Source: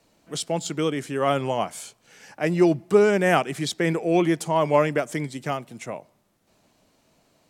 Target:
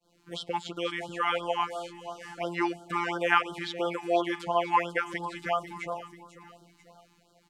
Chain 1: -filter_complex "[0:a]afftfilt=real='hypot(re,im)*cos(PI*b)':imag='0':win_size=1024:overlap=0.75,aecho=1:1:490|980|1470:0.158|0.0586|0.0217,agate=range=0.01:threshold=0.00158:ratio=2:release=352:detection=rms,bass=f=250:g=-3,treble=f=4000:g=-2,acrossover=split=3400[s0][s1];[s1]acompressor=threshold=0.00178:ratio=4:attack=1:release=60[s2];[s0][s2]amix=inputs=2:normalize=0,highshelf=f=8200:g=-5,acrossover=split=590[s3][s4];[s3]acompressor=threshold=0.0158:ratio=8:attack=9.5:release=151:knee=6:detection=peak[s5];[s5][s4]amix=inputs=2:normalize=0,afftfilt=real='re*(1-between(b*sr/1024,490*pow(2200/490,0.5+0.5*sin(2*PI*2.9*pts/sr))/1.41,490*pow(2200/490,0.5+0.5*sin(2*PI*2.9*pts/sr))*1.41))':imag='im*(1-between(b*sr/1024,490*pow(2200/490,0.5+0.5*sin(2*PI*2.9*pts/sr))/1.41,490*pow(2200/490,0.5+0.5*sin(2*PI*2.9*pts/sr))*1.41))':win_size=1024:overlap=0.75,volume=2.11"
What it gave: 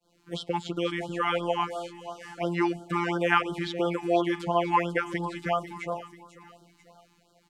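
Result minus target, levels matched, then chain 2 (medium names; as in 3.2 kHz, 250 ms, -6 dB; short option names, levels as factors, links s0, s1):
compression: peak gain reduction -10 dB
-filter_complex "[0:a]afftfilt=real='hypot(re,im)*cos(PI*b)':imag='0':win_size=1024:overlap=0.75,aecho=1:1:490|980|1470:0.158|0.0586|0.0217,agate=range=0.01:threshold=0.00158:ratio=2:release=352:detection=rms,bass=f=250:g=-3,treble=f=4000:g=-2,acrossover=split=3400[s0][s1];[s1]acompressor=threshold=0.00178:ratio=4:attack=1:release=60[s2];[s0][s2]amix=inputs=2:normalize=0,highshelf=f=8200:g=-5,acrossover=split=590[s3][s4];[s3]acompressor=threshold=0.00422:ratio=8:attack=9.5:release=151:knee=6:detection=peak[s5];[s5][s4]amix=inputs=2:normalize=0,afftfilt=real='re*(1-between(b*sr/1024,490*pow(2200/490,0.5+0.5*sin(2*PI*2.9*pts/sr))/1.41,490*pow(2200/490,0.5+0.5*sin(2*PI*2.9*pts/sr))*1.41))':imag='im*(1-between(b*sr/1024,490*pow(2200/490,0.5+0.5*sin(2*PI*2.9*pts/sr))/1.41,490*pow(2200/490,0.5+0.5*sin(2*PI*2.9*pts/sr))*1.41))':win_size=1024:overlap=0.75,volume=2.11"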